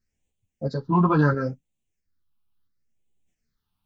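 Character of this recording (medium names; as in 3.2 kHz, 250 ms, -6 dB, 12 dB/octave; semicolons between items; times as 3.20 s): phasing stages 6, 0.72 Hz, lowest notch 500–1400 Hz; tremolo saw up 1.5 Hz, depth 45%; a shimmering, thickened sound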